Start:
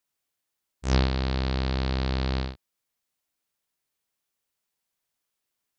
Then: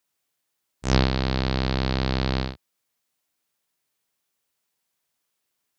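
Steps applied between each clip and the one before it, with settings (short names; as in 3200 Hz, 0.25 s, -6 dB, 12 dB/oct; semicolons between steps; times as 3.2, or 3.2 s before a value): HPF 78 Hz; gain +4.5 dB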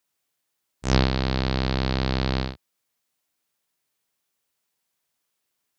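nothing audible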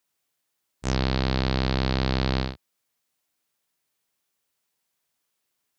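limiter -8 dBFS, peak gain reduction 7 dB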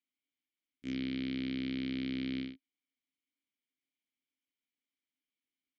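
vowel filter i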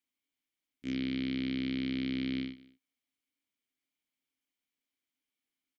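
echo 0.215 s -22 dB; gain +2.5 dB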